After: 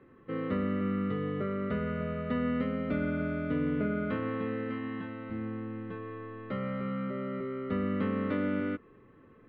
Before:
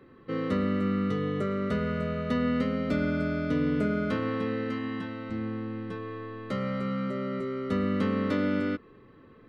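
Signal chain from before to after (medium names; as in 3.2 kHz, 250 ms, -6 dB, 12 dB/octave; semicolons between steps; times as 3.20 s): low-pass 2.9 kHz 24 dB/octave; trim -3.5 dB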